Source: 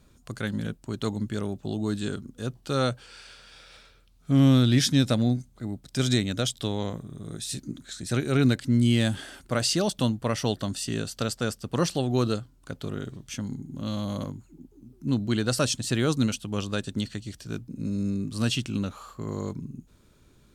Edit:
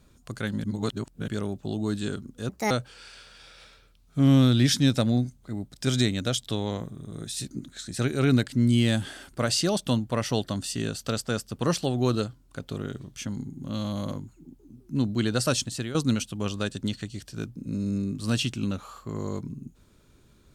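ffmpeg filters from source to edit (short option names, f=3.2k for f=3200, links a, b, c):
-filter_complex "[0:a]asplit=6[a][b][c][d][e][f];[a]atrim=end=0.642[g];[b]atrim=start=0.638:end=1.282,asetpts=PTS-STARTPTS,areverse[h];[c]atrim=start=1.278:end=2.494[i];[d]atrim=start=2.49:end=2.83,asetpts=PTS-STARTPTS,asetrate=69237,aresample=44100,atrim=end_sample=9550,asetpts=PTS-STARTPTS[j];[e]atrim=start=2.826:end=16.07,asetpts=PTS-STARTPTS,afade=t=out:st=12.904:d=0.34:silence=0.211349[k];[f]atrim=start=16.07,asetpts=PTS-STARTPTS,afade=t=in:d=0.004:c=hsin:silence=0.211349[l];[g][h]acrossfade=d=0.004:c1=hsin:c2=hsin[m];[m][i]acrossfade=d=0.004:c1=hsin:c2=hsin[n];[n][j]acrossfade=d=0.004:c1=hsin:c2=hsin[o];[k][l]concat=n=2:v=0:a=1[p];[o][p]acrossfade=d=0.004:c1=hsin:c2=hsin"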